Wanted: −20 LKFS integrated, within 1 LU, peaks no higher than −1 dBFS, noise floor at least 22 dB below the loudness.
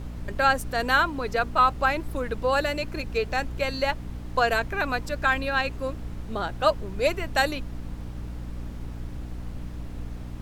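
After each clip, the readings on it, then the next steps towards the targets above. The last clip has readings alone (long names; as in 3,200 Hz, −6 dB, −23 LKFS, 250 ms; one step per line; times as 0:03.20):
mains hum 60 Hz; hum harmonics up to 300 Hz; level of the hum −34 dBFS; background noise floor −37 dBFS; target noise floor −48 dBFS; integrated loudness −25.5 LKFS; sample peak −8.0 dBFS; target loudness −20.0 LKFS
→ hum removal 60 Hz, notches 5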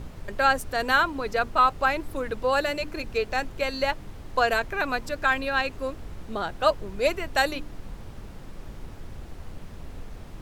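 mains hum none found; background noise floor −42 dBFS; target noise floor −48 dBFS
→ noise reduction from a noise print 6 dB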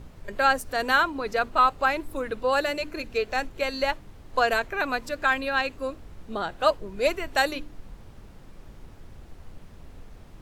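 background noise floor −47 dBFS; target noise floor −48 dBFS
→ noise reduction from a noise print 6 dB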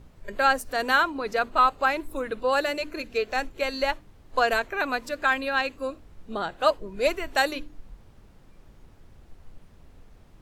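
background noise floor −53 dBFS; integrated loudness −25.5 LKFS; sample peak −8.0 dBFS; target loudness −20.0 LKFS
→ level +5.5 dB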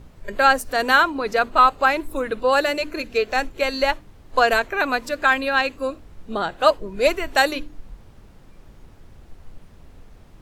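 integrated loudness −20.0 LKFS; sample peak −2.5 dBFS; background noise floor −47 dBFS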